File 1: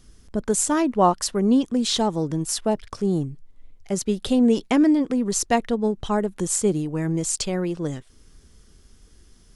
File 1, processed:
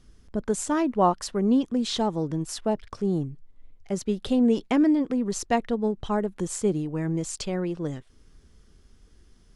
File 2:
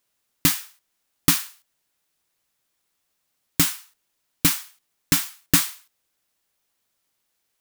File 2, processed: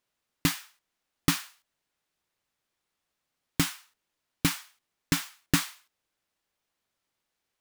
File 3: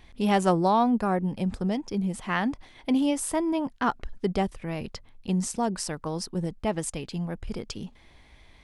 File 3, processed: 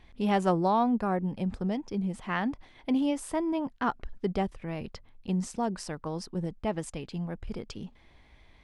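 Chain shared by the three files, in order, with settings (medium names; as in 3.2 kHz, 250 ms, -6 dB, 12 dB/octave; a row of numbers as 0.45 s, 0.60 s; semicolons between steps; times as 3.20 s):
low-pass 3.7 kHz 6 dB/octave; trim -3 dB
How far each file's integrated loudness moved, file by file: -3.5 LU, -8.5 LU, -3.5 LU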